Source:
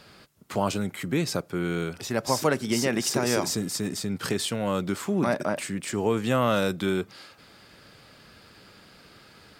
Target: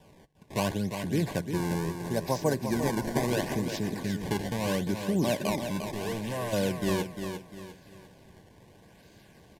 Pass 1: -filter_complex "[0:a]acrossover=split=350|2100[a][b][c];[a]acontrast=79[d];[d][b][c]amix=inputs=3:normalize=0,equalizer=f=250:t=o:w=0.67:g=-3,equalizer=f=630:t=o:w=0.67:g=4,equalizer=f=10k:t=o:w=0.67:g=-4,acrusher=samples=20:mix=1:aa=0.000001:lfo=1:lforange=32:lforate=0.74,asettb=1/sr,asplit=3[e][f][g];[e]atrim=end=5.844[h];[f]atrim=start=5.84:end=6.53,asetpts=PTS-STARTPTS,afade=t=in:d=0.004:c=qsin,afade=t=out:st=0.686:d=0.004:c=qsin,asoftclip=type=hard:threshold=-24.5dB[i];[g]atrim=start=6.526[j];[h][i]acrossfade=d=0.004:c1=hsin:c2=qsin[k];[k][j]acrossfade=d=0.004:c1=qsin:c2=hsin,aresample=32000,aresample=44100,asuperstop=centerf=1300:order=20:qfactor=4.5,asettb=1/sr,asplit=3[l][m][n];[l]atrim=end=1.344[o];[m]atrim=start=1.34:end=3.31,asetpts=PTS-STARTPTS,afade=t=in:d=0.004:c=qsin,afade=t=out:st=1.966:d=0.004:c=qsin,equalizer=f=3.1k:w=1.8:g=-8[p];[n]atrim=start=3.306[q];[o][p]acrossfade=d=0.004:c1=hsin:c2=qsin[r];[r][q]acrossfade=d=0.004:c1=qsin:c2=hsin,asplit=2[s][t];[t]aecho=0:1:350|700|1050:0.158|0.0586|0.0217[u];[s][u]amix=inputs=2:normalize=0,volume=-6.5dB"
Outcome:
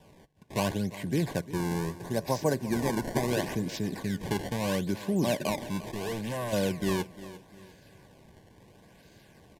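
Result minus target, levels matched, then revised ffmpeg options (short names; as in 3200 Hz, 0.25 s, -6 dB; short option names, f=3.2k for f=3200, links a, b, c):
echo-to-direct -8.5 dB
-filter_complex "[0:a]acrossover=split=350|2100[a][b][c];[a]acontrast=79[d];[d][b][c]amix=inputs=3:normalize=0,equalizer=f=250:t=o:w=0.67:g=-3,equalizer=f=630:t=o:w=0.67:g=4,equalizer=f=10k:t=o:w=0.67:g=-4,acrusher=samples=20:mix=1:aa=0.000001:lfo=1:lforange=32:lforate=0.74,asettb=1/sr,asplit=3[e][f][g];[e]atrim=end=5.844[h];[f]atrim=start=5.84:end=6.53,asetpts=PTS-STARTPTS,afade=t=in:d=0.004:c=qsin,afade=t=out:st=0.686:d=0.004:c=qsin,asoftclip=type=hard:threshold=-24.5dB[i];[g]atrim=start=6.526[j];[h][i]acrossfade=d=0.004:c1=hsin:c2=qsin[k];[k][j]acrossfade=d=0.004:c1=qsin:c2=hsin,aresample=32000,aresample=44100,asuperstop=centerf=1300:order=20:qfactor=4.5,asettb=1/sr,asplit=3[l][m][n];[l]atrim=end=1.344[o];[m]atrim=start=1.34:end=3.31,asetpts=PTS-STARTPTS,afade=t=in:d=0.004:c=qsin,afade=t=out:st=1.966:d=0.004:c=qsin,equalizer=f=3.1k:w=1.8:g=-8[p];[n]atrim=start=3.306[q];[o][p]acrossfade=d=0.004:c1=hsin:c2=qsin[r];[r][q]acrossfade=d=0.004:c1=qsin:c2=hsin,asplit=2[s][t];[t]aecho=0:1:350|700|1050|1400:0.422|0.156|0.0577|0.0214[u];[s][u]amix=inputs=2:normalize=0,volume=-6.5dB"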